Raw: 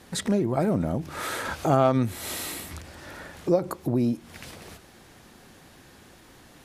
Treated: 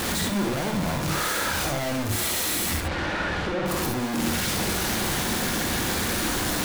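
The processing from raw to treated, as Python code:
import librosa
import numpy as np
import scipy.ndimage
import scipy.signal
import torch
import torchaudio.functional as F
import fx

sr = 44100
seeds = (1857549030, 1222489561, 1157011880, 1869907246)

y = np.sign(x) * np.sqrt(np.mean(np.square(x)))
y = fx.lowpass(y, sr, hz=3100.0, slope=12, at=(2.8, 3.66))
y = fx.rev_gated(y, sr, seeds[0], gate_ms=90, shape='rising', drr_db=2.0)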